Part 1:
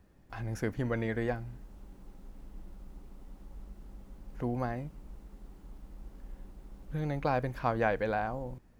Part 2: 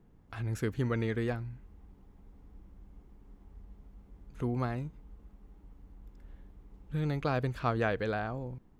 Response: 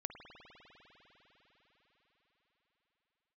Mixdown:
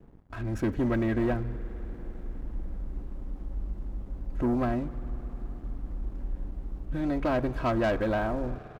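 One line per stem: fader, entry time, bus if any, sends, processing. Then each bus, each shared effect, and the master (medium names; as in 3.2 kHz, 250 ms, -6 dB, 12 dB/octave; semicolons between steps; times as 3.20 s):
-16.5 dB, 0.00 s, no send, high-pass 74 Hz 6 dB/octave; tilt EQ -3 dB/octave; level rider gain up to 13 dB
+3.0 dB, 3.2 ms, send -13.5 dB, treble shelf 2.4 kHz -11.5 dB; auto duck -8 dB, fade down 0.25 s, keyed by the first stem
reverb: on, RT60 5.1 s, pre-delay 50 ms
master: waveshaping leveller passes 2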